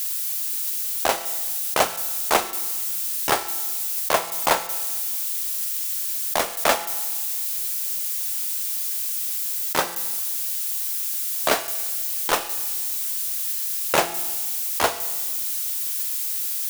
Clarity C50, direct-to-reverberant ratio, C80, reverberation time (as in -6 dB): 13.0 dB, 11.0 dB, 14.5 dB, 1.4 s